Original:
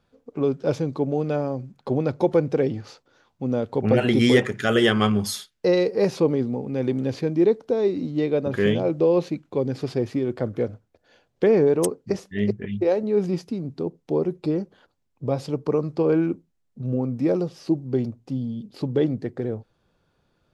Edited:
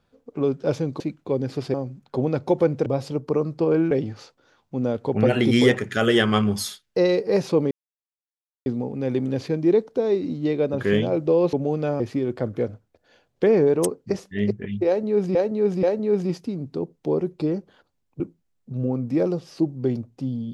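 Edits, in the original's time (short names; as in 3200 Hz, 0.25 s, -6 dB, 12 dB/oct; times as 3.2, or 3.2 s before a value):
1–1.47 swap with 9.26–10
6.39 insert silence 0.95 s
12.87–13.35 loop, 3 plays
15.24–16.29 move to 2.59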